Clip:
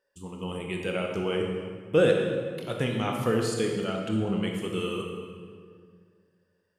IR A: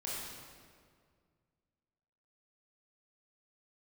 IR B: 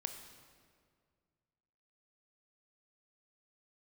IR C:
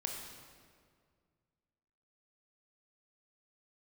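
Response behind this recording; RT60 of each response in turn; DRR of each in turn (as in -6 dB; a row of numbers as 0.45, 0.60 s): C; 2.0, 2.0, 2.0 s; -7.0, 6.5, 1.0 dB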